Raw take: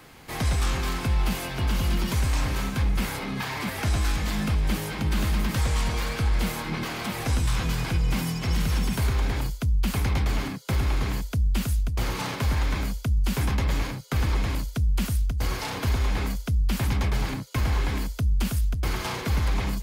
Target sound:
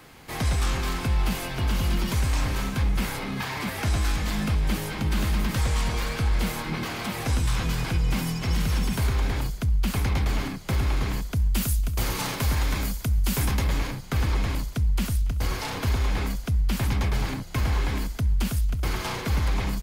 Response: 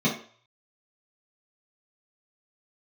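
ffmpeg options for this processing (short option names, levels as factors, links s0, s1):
-filter_complex "[0:a]asettb=1/sr,asplit=3[s0][s1][s2];[s0]atrim=end=11.364[s3];[s1]atrim=start=11.36:end=13.67,asetpts=PTS-STARTPTS,afade=t=in:d=0.004:c=qsin,afade=t=out:st=2.306:d=0.004:c=qsin,highshelf=f=6700:g=10.5[s4];[s2]atrim=start=13.666[s5];[s3][s4]acrossfade=d=0.004:c1=hsin:c2=qsin[s6];[s6][s5]acrossfade=d=0.004:c1=qsin:c2=hsin,asplit=4[s7][s8][s9][s10];[s8]adelay=281,afreqshift=-73,volume=0.1[s11];[s9]adelay=562,afreqshift=-146,volume=0.0452[s12];[s10]adelay=843,afreqshift=-219,volume=0.0202[s13];[s7][s11][s12][s13]amix=inputs=4:normalize=0"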